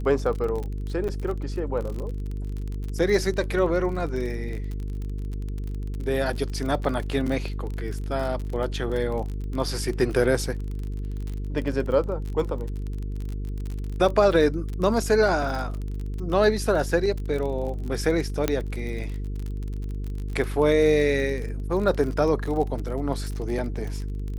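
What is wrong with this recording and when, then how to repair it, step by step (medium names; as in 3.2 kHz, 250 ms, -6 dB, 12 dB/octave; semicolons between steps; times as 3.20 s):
buzz 50 Hz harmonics 9 -30 dBFS
crackle 32 per s -30 dBFS
1.08–1.09 s: dropout 7 ms
18.48 s: pop -8 dBFS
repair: de-click; de-hum 50 Hz, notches 9; interpolate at 1.08 s, 7 ms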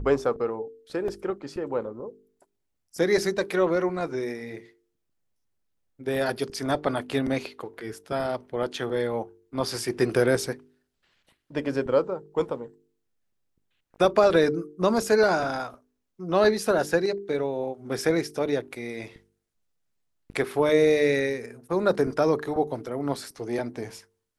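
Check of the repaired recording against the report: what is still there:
nothing left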